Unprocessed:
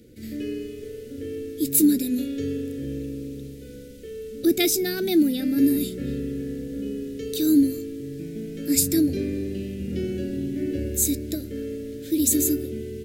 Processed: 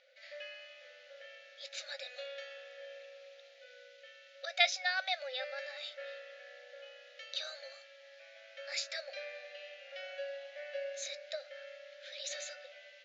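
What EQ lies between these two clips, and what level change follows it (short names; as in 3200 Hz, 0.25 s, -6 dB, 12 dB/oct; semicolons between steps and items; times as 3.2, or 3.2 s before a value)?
brick-wall FIR high-pass 520 Hz; Chebyshev low-pass 7100 Hz, order 8; air absorption 250 m; +4.0 dB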